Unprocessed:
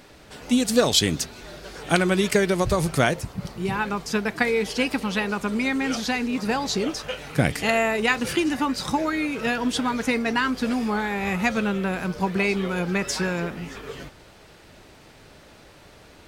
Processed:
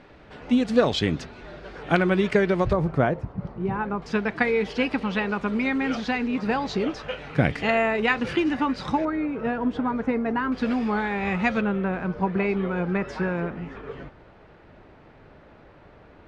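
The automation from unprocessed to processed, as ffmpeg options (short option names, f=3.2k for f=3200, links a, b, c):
-af "asetnsamples=n=441:p=0,asendcmd='2.73 lowpass f 1200;4.02 lowpass f 2800;9.05 lowpass f 1200;10.52 lowpass f 3100;11.61 lowpass f 1700',lowpass=2.4k"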